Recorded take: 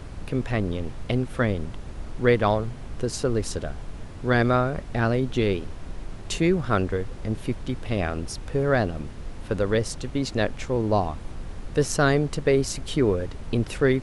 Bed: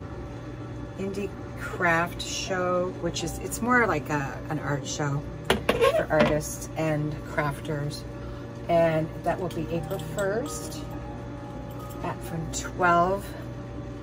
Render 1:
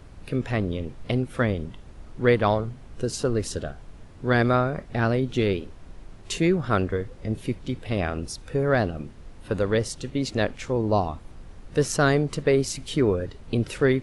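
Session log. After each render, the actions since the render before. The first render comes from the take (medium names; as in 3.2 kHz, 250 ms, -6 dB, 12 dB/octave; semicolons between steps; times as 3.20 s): noise print and reduce 8 dB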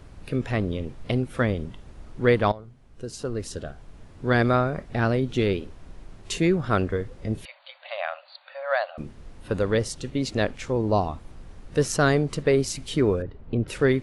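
2.52–4.26 s: fade in, from -17.5 dB; 7.45–8.98 s: brick-wall FIR band-pass 530–4700 Hz; 13.22–13.68 s: tape spacing loss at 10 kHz 39 dB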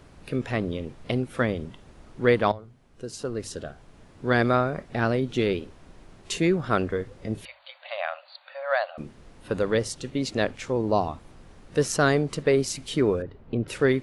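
bass shelf 93 Hz -9 dB; hum notches 50/100 Hz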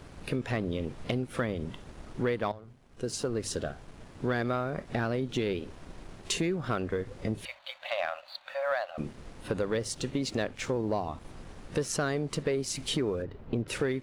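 compression 5:1, threshold -31 dBFS, peak gain reduction 14.5 dB; waveshaping leveller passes 1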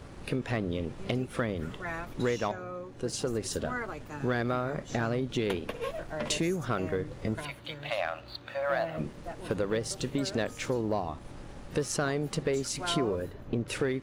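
add bed -14.5 dB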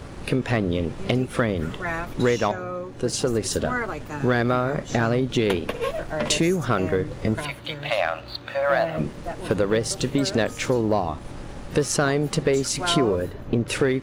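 trim +8.5 dB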